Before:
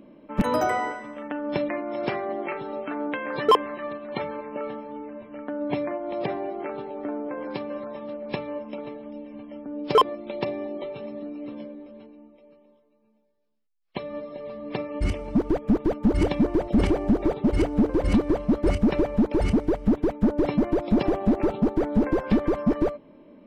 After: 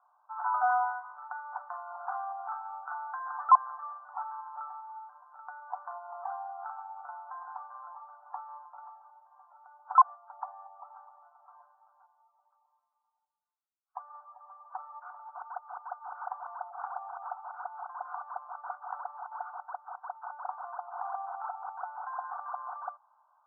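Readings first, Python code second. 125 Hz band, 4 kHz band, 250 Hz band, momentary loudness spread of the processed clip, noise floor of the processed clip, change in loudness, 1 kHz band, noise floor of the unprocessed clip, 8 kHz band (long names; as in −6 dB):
below −40 dB, below −40 dB, below −40 dB, 20 LU, −78 dBFS, −9.5 dB, −0.5 dB, −61 dBFS, can't be measured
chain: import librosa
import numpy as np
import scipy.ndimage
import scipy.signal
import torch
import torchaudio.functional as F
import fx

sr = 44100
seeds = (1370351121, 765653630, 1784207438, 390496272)

y = scipy.signal.sosfilt(scipy.signal.cheby1(5, 1.0, [720.0, 1500.0], 'bandpass', fs=sr, output='sos'), x)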